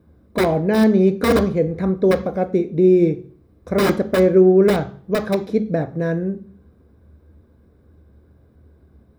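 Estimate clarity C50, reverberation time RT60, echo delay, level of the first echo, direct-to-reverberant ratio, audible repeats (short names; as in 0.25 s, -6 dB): 14.5 dB, 0.50 s, none, none, 9.0 dB, none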